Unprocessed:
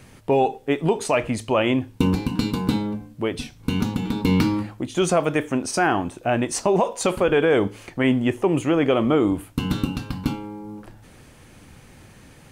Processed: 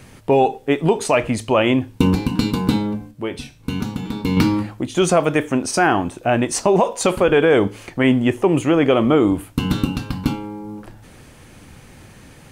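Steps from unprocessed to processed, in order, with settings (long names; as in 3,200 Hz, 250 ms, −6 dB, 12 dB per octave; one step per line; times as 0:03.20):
0:03.11–0:04.37: tuned comb filter 68 Hz, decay 0.34 s, harmonics all, mix 60%
level +4 dB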